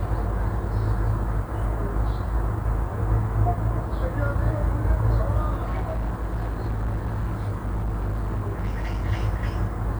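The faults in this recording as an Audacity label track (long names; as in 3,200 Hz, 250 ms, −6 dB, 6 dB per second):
5.620000	9.050000	clipping −22.5 dBFS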